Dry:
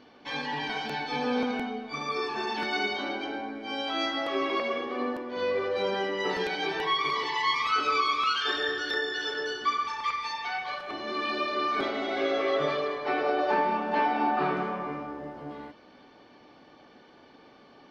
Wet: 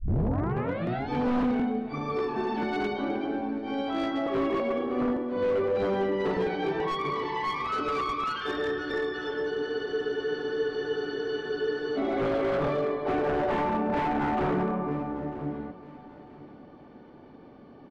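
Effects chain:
turntable start at the beginning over 1.10 s
low-shelf EQ 380 Hz +11.5 dB
wave folding −20 dBFS
low-pass filter 1,100 Hz 6 dB per octave
repeating echo 946 ms, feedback 31%, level −18 dB
frozen spectrum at 0:09.52, 2.44 s

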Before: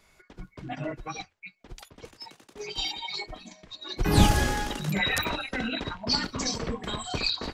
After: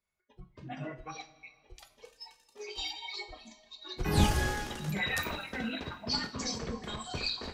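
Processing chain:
noise reduction from a noise print of the clip's start 21 dB
coupled-rooms reverb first 0.36 s, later 2.6 s, from −18 dB, DRR 5.5 dB
level −7 dB

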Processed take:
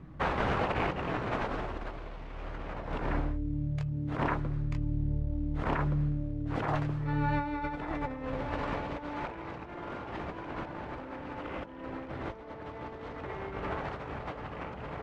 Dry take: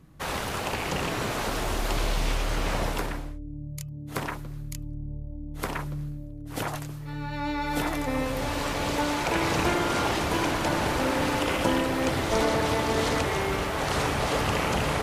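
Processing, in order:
variable-slope delta modulation 64 kbit/s
low-pass filter 1,900 Hz 12 dB per octave
double-tracking delay 16 ms −13.5 dB
compressor whose output falls as the input rises −33 dBFS, ratio −0.5

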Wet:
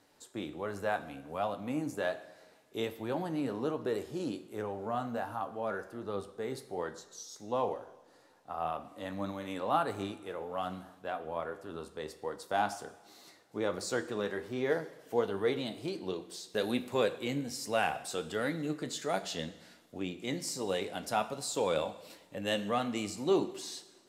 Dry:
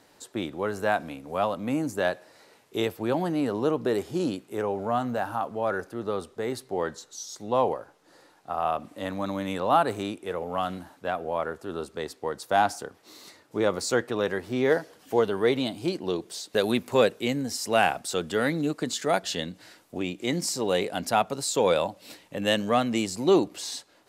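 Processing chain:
flanger 1.3 Hz, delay 9.7 ms, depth 5.3 ms, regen +61%
convolution reverb, pre-delay 3 ms, DRR 11.5 dB
level −4 dB

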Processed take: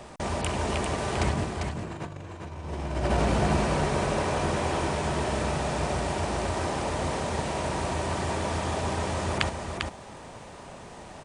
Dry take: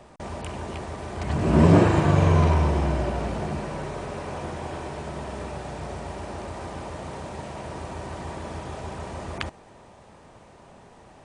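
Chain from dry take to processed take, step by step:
high-shelf EQ 2,100 Hz +5 dB
compressor whose output falls as the input rises −27 dBFS, ratio −0.5
single-tap delay 397 ms −5 dB

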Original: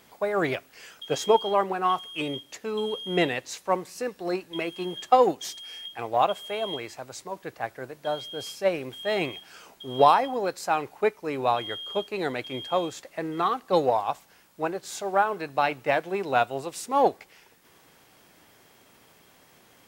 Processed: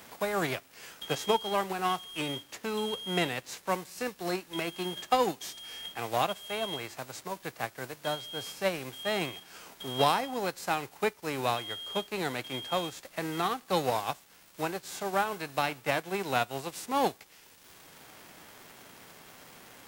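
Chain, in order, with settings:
spectral envelope flattened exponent 0.6
surface crackle 510 per second −45 dBFS
multiband upward and downward compressor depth 40%
level −5 dB

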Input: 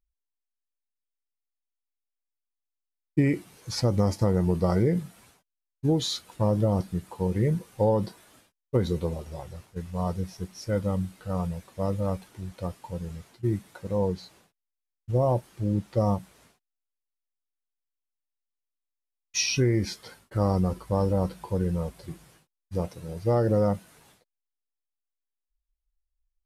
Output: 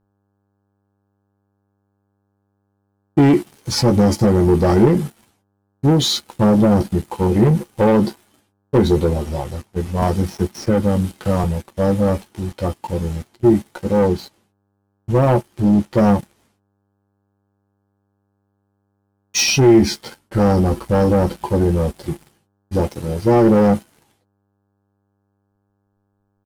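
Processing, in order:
double-tracking delay 14 ms −6.5 dB
leveller curve on the samples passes 3
hum with harmonics 100 Hz, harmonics 17, −70 dBFS −6 dB per octave
hollow resonant body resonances 240/340/820/3,100 Hz, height 7 dB, ringing for 45 ms
0:10.02–0:11.44: multiband upward and downward compressor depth 70%

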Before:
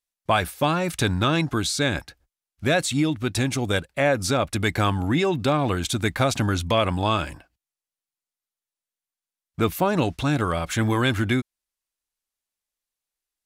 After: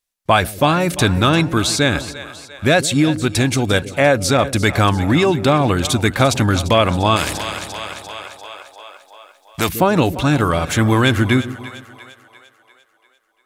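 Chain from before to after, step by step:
echo with a time of its own for lows and highs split 510 Hz, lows 144 ms, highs 346 ms, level −14 dB
0:07.16–0:09.69: every bin compressed towards the loudest bin 2 to 1
level +7 dB

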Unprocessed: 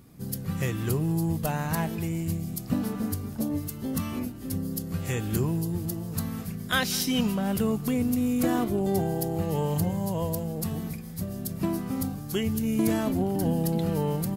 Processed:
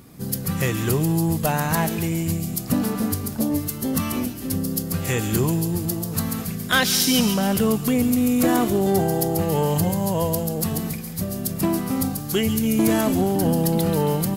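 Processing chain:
low-shelf EQ 210 Hz −5.5 dB
soft clipping −18.5 dBFS, distortion −22 dB
delay with a high-pass on its return 138 ms, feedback 48%, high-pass 3,700 Hz, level −4 dB
level +9 dB

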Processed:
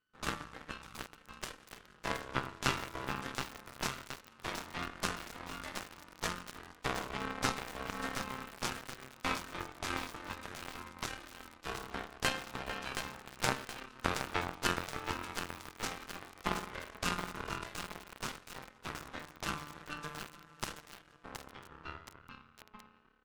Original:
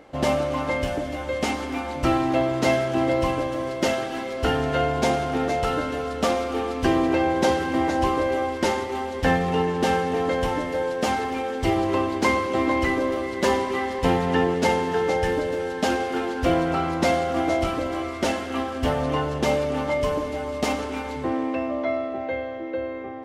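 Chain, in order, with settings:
high-pass filter 180 Hz 24 dB per octave
bass and treble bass −12 dB, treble +3 dB
steady tone 750 Hz −33 dBFS
single-tap delay 795 ms −20.5 dB
full-wave rectification
harmonic generator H 2 −18 dB, 3 −9 dB, 5 −40 dB, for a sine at −8 dBFS
feedback echo at a low word length 722 ms, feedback 55%, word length 6 bits, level −6 dB
level −2 dB

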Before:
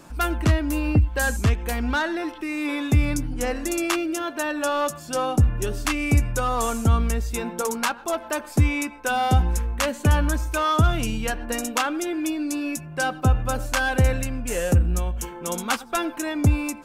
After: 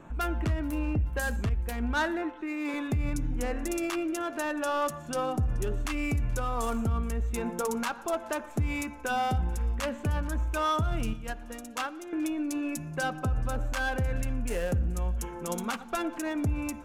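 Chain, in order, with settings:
adaptive Wiener filter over 9 samples
0:11.13–0:12.13: noise gate −23 dBFS, range −12 dB
low-shelf EQ 63 Hz +6.5 dB
in parallel at −2 dB: downward compressor, threshold −27 dBFS, peak gain reduction 16 dB
on the sum: brickwall limiter −13.5 dBFS, peak gain reduction 9 dB
delay with a high-pass on its return 428 ms, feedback 51%, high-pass 1,800 Hz, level −23.5 dB
on a send at −17 dB: convolution reverb RT60 1.1 s, pre-delay 3 ms
0:01.49–0:02.74: on the sum: multiband upward and downward expander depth 70%
level −7.5 dB

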